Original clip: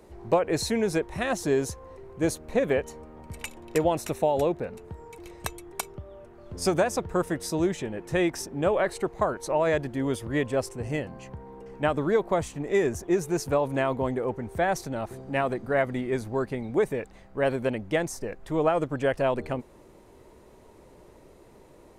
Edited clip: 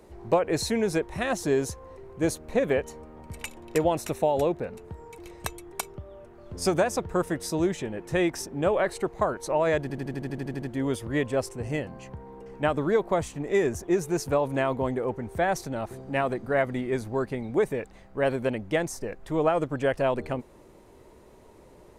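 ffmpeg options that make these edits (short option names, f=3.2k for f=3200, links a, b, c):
-filter_complex "[0:a]asplit=11[a][b][c][d][e][f][g][h][i][j][k];[a]atrim=end=9.902[l];[b]atrim=start=9.818:end=9.902[m];[c]atrim=start=9.818:end=9.902[n];[d]atrim=start=9.818:end=9.902[o];[e]atrim=start=9.818:end=9.902[p];[f]atrim=start=9.818:end=9.902[q];[g]atrim=start=9.818:end=9.902[r];[h]atrim=start=9.818:end=9.902[s];[i]atrim=start=9.818:end=9.902[t];[j]atrim=start=9.818:end=9.902[u];[k]atrim=start=9.818[v];[l][m]acrossfade=d=0.004:c1=hsin:c2=hsin[w];[w][n]acrossfade=d=0.004:c1=hsin:c2=hsin[x];[x][o]acrossfade=d=0.004:c1=hsin:c2=hsin[y];[y][p]acrossfade=d=0.004:c1=hsin:c2=hsin[z];[z][q]acrossfade=d=0.004:c1=hsin:c2=hsin[aa];[aa][r]acrossfade=d=0.004:c1=hsin:c2=hsin[ab];[ab][s]acrossfade=d=0.004:c1=hsin:c2=hsin[ac];[ac][t]acrossfade=d=0.004:c1=hsin:c2=hsin[ad];[ad][u]acrossfade=d=0.004:c1=hsin:c2=hsin[ae];[ae][v]acrossfade=d=0.004:c1=hsin:c2=hsin"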